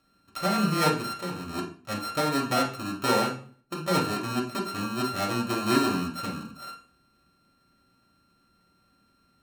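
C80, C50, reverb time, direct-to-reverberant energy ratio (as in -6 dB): 13.5 dB, 8.5 dB, 0.45 s, -2.0 dB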